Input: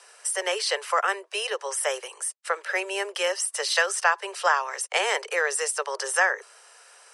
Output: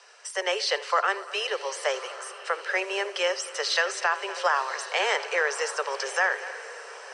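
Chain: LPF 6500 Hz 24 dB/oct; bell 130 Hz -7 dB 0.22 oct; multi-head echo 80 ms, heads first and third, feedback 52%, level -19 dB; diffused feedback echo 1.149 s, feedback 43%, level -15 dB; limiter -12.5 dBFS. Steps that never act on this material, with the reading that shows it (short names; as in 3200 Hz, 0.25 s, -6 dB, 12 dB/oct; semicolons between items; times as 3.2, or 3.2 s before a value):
bell 130 Hz: input band starts at 340 Hz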